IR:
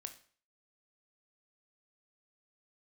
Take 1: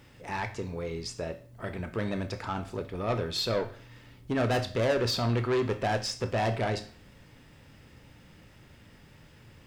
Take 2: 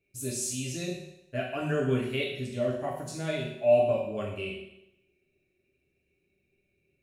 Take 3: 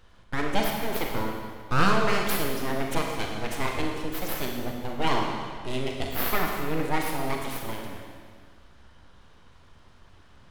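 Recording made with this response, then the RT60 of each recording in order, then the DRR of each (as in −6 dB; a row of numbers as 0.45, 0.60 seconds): 1; 0.45, 0.85, 1.8 seconds; 7.0, −4.5, 0.5 decibels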